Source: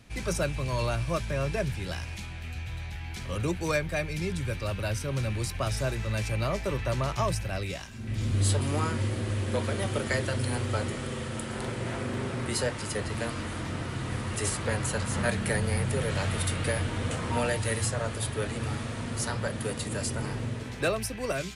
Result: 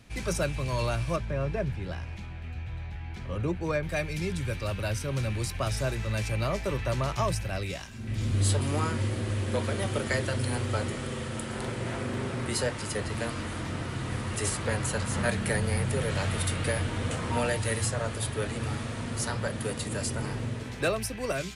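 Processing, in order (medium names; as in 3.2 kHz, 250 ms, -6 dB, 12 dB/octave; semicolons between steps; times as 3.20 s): 1.16–3.83 s: low-pass 1.4 kHz 6 dB/octave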